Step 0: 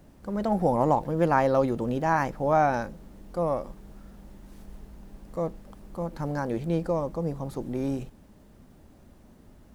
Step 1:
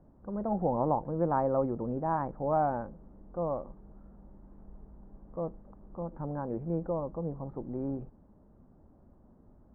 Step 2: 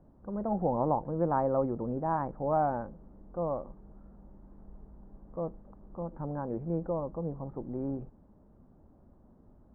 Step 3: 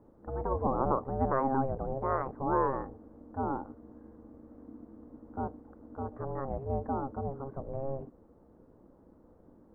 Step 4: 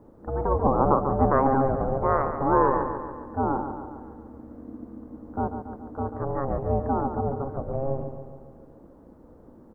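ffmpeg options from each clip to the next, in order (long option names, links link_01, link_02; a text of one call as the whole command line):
ffmpeg -i in.wav -af "lowpass=frequency=1200:width=0.5412,lowpass=frequency=1200:width=1.3066,volume=-5.5dB" out.wav
ffmpeg -i in.wav -af "bass=frequency=250:gain=0,treble=frequency=4000:gain=-9" out.wav
ffmpeg -i in.wav -af "aeval=exprs='val(0)*sin(2*PI*270*n/s)':channel_layout=same,volume=2.5dB" out.wav
ffmpeg -i in.wav -af "aecho=1:1:141|282|423|564|705|846|987:0.376|0.214|0.122|0.0696|0.0397|0.0226|0.0129,volume=7.5dB" out.wav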